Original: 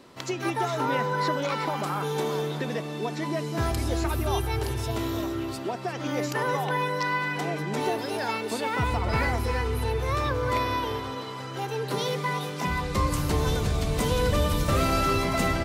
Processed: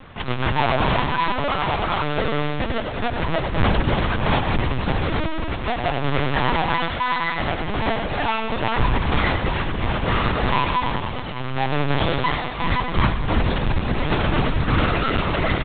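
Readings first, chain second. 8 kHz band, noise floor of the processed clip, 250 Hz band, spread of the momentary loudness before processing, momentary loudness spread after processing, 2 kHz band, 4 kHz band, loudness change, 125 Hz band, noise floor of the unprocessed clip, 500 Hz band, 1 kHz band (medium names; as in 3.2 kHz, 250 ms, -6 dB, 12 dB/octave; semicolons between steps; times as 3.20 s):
under -40 dB, -27 dBFS, +5.0 dB, 7 LU, 5 LU, +7.0 dB, +6.5 dB, +5.0 dB, +5.5 dB, -35 dBFS, +3.0 dB, +6.0 dB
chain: square wave that keeps the level; reverb removal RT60 1.1 s; peaking EQ 370 Hz -7.5 dB 0.98 oct; in parallel at -1 dB: peak limiter -20.5 dBFS, peak gain reduction 8 dB; on the sum: gain riding within 4 dB 2 s; on a send: feedback delay 99 ms, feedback 60%, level -6 dB; on the sum: LPC vocoder at 8 kHz pitch kept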